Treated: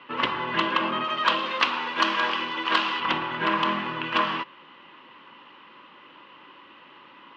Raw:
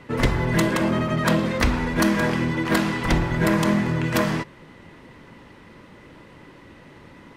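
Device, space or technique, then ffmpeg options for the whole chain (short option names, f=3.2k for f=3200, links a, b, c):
phone earpiece: -filter_complex "[0:a]asettb=1/sr,asplit=3[a][b][c];[a]atrim=end=1.044[d];[b]atrim=start=1.04:end=3,asetpts=PTS-STARTPTS,afade=t=in:d=0.004:c=qsin,afade=t=out:st=1.956:d=0.004:c=qsin,bass=f=250:g=-11,treble=f=4k:g=10[e];[c]atrim=start=2.996[f];[d][e]acrossfade=d=0.004:c1=hsin:c2=qsin[g];[g][f]acrossfade=d=0.004:c1=qsin:c2=hsin,highpass=440,equalizer=f=450:t=q:w=4:g=-8,equalizer=f=670:t=q:w=4:g=-8,equalizer=f=1.1k:t=q:w=4:g=8,equalizer=f=2k:t=q:w=4:g=-5,equalizer=f=2.9k:t=q:w=4:g=10,lowpass=f=3.7k:w=0.5412,lowpass=f=3.7k:w=1.3066"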